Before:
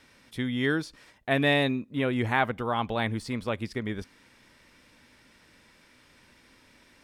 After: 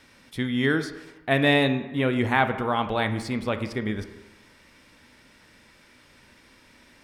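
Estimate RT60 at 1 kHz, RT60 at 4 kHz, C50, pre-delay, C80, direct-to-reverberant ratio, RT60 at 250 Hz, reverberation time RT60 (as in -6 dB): 1.1 s, 0.85 s, 11.0 dB, 16 ms, 12.5 dB, 8.5 dB, 1.0 s, 1.1 s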